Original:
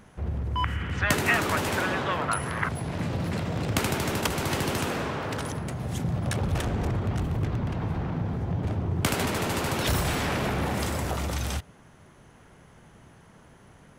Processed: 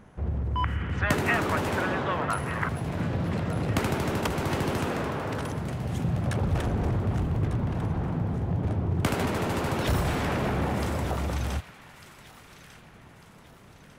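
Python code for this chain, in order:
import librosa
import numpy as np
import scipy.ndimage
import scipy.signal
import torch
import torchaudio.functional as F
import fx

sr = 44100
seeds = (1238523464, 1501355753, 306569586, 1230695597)

y = fx.high_shelf(x, sr, hz=2300.0, db=-9.0)
y = fx.echo_wet_highpass(y, sr, ms=1198, feedback_pct=46, hz=1500.0, wet_db=-12.5)
y = F.gain(torch.from_numpy(y), 1.0).numpy()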